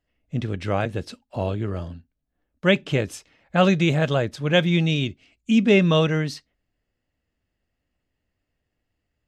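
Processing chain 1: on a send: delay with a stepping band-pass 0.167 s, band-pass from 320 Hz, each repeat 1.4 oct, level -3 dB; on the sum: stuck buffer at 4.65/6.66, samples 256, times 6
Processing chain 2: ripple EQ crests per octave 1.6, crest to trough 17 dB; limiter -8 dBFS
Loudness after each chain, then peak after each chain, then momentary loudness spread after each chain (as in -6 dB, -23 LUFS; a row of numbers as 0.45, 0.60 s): -22.0, -20.5 LUFS; -5.5, -8.0 dBFS; 15, 15 LU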